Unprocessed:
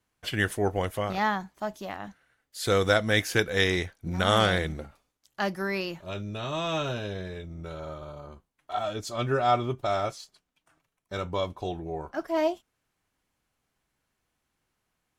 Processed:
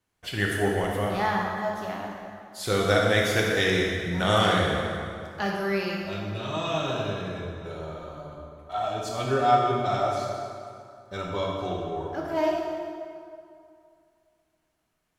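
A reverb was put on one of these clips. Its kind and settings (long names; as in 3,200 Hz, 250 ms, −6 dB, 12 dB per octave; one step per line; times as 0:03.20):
dense smooth reverb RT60 2.4 s, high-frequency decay 0.7×, DRR −2.5 dB
level −2.5 dB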